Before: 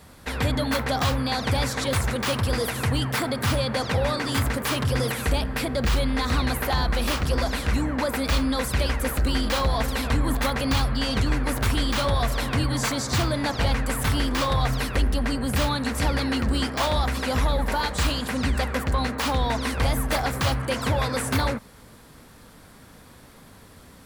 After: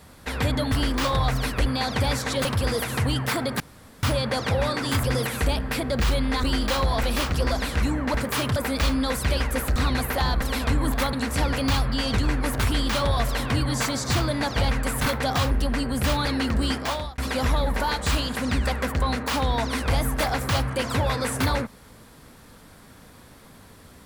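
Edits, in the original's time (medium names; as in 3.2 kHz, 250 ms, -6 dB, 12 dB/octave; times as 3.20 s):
0.72–1.17 s: swap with 14.09–15.03 s
1.96–2.31 s: delete
3.46 s: insert room tone 0.43 s
4.47–4.89 s: move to 8.05 s
6.28–6.94 s: swap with 9.25–9.85 s
15.77–16.17 s: move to 10.56 s
16.71–17.10 s: fade out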